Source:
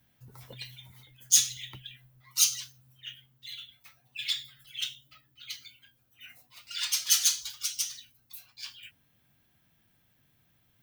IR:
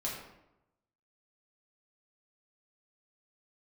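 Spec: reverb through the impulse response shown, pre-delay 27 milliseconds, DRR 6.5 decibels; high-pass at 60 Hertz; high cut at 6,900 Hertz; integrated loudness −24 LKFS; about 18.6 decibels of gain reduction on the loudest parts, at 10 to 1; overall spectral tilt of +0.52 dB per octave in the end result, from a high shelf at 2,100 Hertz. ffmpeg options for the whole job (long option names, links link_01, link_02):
-filter_complex "[0:a]highpass=60,lowpass=6900,highshelf=frequency=2100:gain=4,acompressor=threshold=-35dB:ratio=10,asplit=2[link_01][link_02];[1:a]atrim=start_sample=2205,adelay=27[link_03];[link_02][link_03]afir=irnorm=-1:irlink=0,volume=-9.5dB[link_04];[link_01][link_04]amix=inputs=2:normalize=0,volume=16dB"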